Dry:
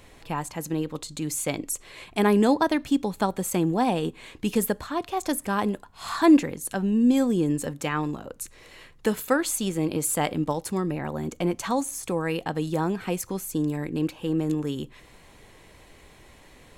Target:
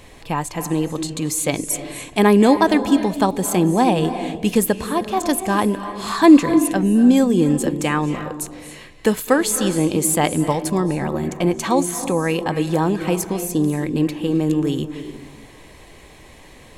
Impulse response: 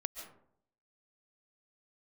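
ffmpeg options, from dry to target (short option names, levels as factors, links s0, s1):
-filter_complex "[0:a]bandreject=f=1400:w=9.9,asplit=2[s0][s1];[1:a]atrim=start_sample=2205,asetrate=23814,aresample=44100[s2];[s1][s2]afir=irnorm=-1:irlink=0,volume=0.75[s3];[s0][s3]amix=inputs=2:normalize=0,volume=1.19"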